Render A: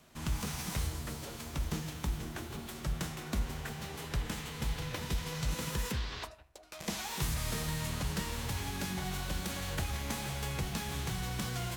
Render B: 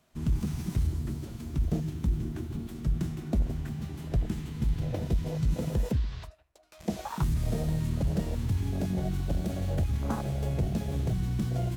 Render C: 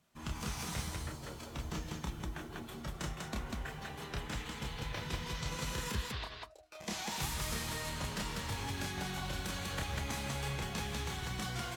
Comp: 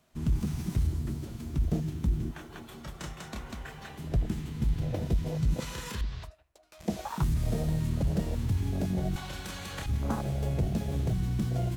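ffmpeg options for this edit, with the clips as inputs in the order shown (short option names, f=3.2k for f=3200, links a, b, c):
-filter_complex "[2:a]asplit=3[a][b][c];[1:a]asplit=4[d][e][f][g];[d]atrim=end=2.312[h];[a]atrim=start=2.308:end=3.982[i];[e]atrim=start=3.978:end=5.602[j];[b]atrim=start=5.598:end=6.012[k];[f]atrim=start=6.008:end=9.162[l];[c]atrim=start=9.158:end=9.862[m];[g]atrim=start=9.858[n];[h][i]acrossfade=d=0.004:c1=hsin:c2=hsin[o];[o][j]acrossfade=d=0.004:c1=hsin:c2=hsin[p];[p][k]acrossfade=d=0.004:c1=hsin:c2=hsin[q];[q][l]acrossfade=d=0.004:c1=hsin:c2=hsin[r];[r][m]acrossfade=d=0.004:c1=hsin:c2=hsin[s];[s][n]acrossfade=d=0.004:c1=hsin:c2=hsin"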